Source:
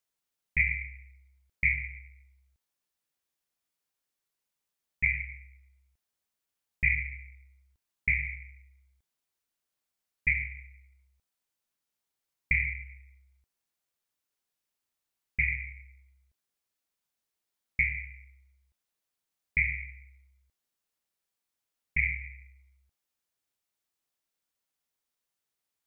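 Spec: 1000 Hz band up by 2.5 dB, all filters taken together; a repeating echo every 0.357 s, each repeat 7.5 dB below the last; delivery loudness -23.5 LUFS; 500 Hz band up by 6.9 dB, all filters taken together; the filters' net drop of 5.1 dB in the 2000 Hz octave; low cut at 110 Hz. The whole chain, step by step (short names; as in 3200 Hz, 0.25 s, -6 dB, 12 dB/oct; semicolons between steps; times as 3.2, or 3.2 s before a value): HPF 110 Hz; bell 500 Hz +8.5 dB; bell 1000 Hz +3.5 dB; bell 2000 Hz -6.5 dB; feedback echo 0.357 s, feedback 42%, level -7.5 dB; gain +13.5 dB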